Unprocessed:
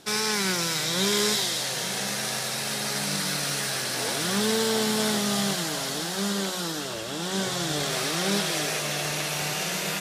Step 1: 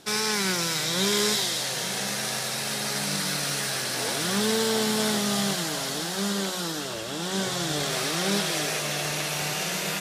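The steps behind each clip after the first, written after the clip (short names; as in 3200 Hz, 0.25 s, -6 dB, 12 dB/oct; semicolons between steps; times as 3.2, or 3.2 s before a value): nothing audible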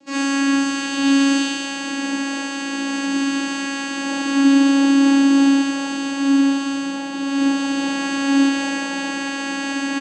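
vocoder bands 8, saw 276 Hz; on a send: echo 84 ms -10.5 dB; on the sum: non-linear reverb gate 90 ms rising, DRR -8 dB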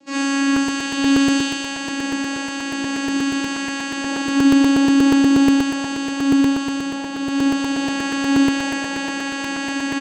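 crackling interface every 0.12 s, samples 128, repeat, from 0.56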